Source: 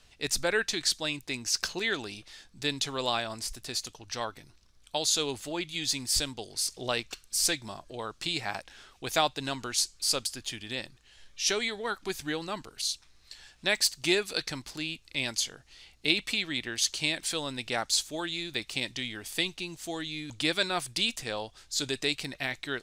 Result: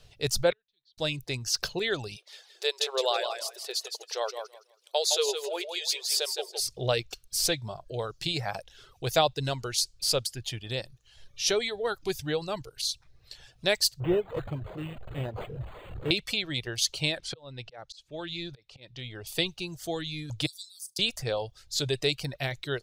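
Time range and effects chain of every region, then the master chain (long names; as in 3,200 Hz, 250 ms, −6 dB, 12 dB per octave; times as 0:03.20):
0:00.50–0:00.98: low-pass with resonance 3,700 Hz, resonance Q 3.3 + gate with flip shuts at −23 dBFS, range −42 dB
0:02.16–0:06.60: linear-phase brick-wall high-pass 350 Hz + repeating echo 163 ms, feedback 27%, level −5.5 dB
0:14.00–0:16.11: linear delta modulator 32 kbit/s, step −35.5 dBFS + parametric band 1,700 Hz −14 dB 1.1 octaves + linearly interpolated sample-rate reduction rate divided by 8×
0:17.19–0:19.27: low-pass filter 5,000 Hz + volume swells 547 ms
0:20.46–0:20.99: inverse Chebyshev high-pass filter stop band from 2,100 Hz, stop band 50 dB + flutter between parallel walls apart 6.5 metres, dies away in 0.21 s
whole clip: reverb reduction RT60 0.6 s; octave-band graphic EQ 125/250/500/1,000/2,000/8,000 Hz +10/−10/+6/−5/−6/−7 dB; level +4.5 dB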